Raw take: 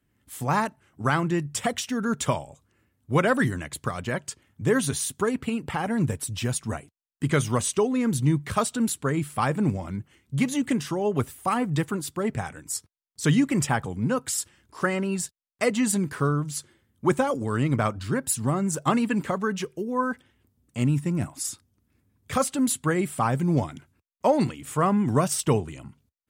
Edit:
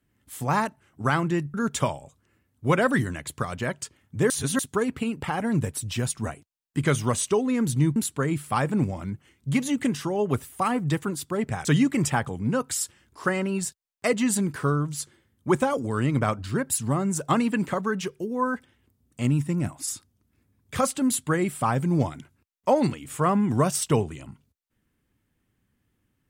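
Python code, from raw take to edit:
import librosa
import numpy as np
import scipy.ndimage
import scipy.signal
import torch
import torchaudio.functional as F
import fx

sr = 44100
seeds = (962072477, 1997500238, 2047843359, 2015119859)

y = fx.edit(x, sr, fx.cut(start_s=1.54, length_s=0.46),
    fx.reverse_span(start_s=4.76, length_s=0.29),
    fx.cut(start_s=8.42, length_s=0.4),
    fx.cut(start_s=12.51, length_s=0.71), tone=tone)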